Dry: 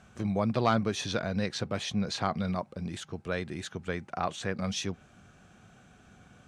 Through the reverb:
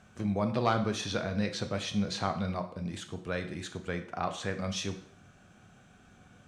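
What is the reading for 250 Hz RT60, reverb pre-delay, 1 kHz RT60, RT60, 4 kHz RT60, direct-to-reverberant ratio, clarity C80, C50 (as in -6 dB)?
0.60 s, 6 ms, 0.60 s, 0.60 s, 0.60 s, 6.5 dB, 14.5 dB, 11.0 dB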